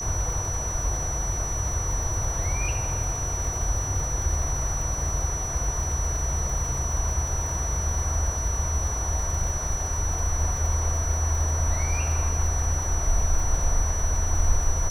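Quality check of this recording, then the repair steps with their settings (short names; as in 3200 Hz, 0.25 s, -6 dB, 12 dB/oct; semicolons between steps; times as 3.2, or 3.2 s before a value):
crackle 36/s -31 dBFS
tone 5900 Hz -30 dBFS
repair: de-click; notch 5900 Hz, Q 30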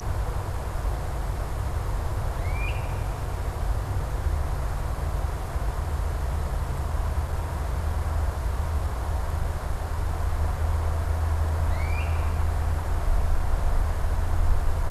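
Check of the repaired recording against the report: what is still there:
none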